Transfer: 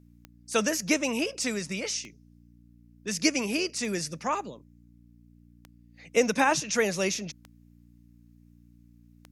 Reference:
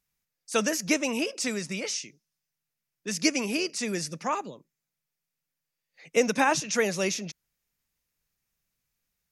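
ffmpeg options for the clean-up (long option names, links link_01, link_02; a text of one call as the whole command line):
ffmpeg -i in.wav -af "adeclick=threshold=4,bandreject=frequency=58.7:width_type=h:width=4,bandreject=frequency=117.4:width_type=h:width=4,bandreject=frequency=176.1:width_type=h:width=4,bandreject=frequency=234.8:width_type=h:width=4,bandreject=frequency=293.5:width_type=h:width=4" out.wav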